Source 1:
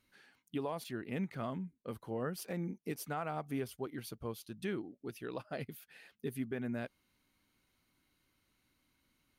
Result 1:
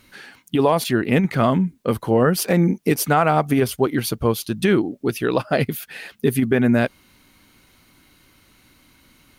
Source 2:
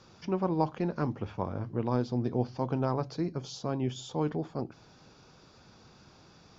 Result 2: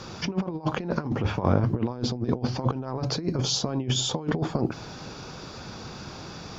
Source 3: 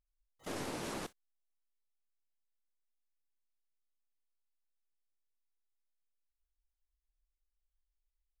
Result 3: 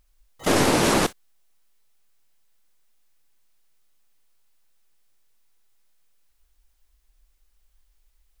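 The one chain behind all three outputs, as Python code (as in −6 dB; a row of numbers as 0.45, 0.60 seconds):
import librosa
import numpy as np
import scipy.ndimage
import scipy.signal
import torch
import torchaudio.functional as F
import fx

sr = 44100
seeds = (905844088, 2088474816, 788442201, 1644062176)

y = fx.over_compress(x, sr, threshold_db=-36.0, ratio=-0.5)
y = librosa.util.normalize(y) * 10.0 ** (-6 / 20.0)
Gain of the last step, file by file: +21.5, +11.0, +21.5 decibels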